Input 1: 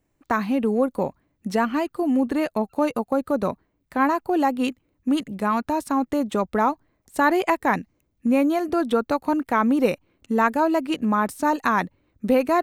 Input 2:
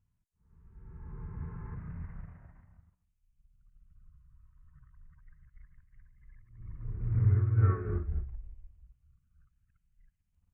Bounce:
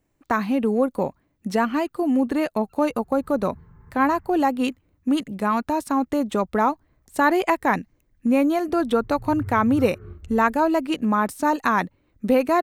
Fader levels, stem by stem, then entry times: +0.5, −7.5 decibels; 0.00, 2.15 seconds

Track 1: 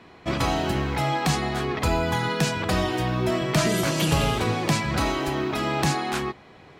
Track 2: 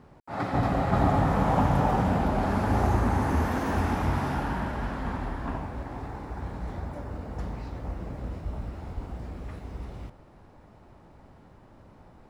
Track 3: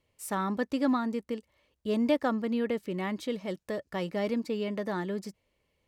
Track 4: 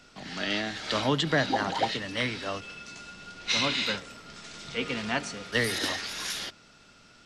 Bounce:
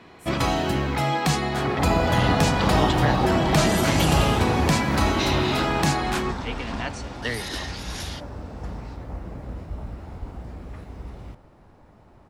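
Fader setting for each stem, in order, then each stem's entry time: +1.0, +0.5, −9.5, −2.5 decibels; 0.00, 1.25, 0.00, 1.70 seconds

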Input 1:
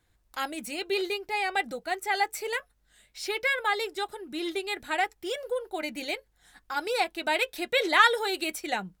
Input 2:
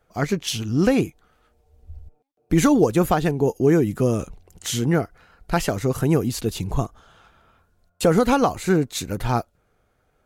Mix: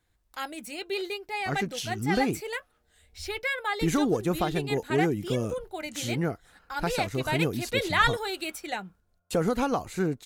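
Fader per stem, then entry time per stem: −3.0, −8.5 decibels; 0.00, 1.30 seconds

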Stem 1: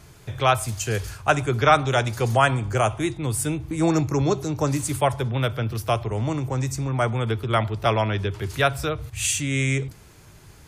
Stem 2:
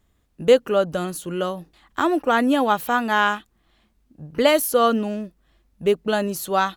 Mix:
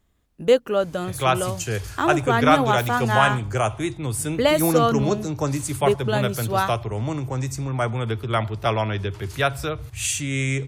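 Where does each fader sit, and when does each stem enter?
−1.0, −2.0 decibels; 0.80, 0.00 seconds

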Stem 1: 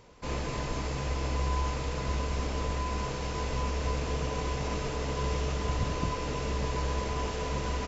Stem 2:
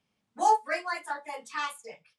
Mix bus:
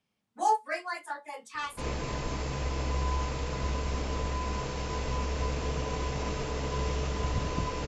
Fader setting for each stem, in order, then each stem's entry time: −0.5, −3.0 decibels; 1.55, 0.00 seconds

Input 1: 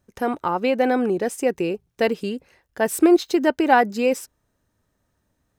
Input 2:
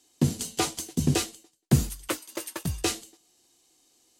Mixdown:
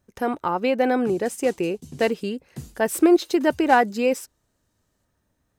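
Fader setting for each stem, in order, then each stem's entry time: −1.0, −16.0 decibels; 0.00, 0.85 seconds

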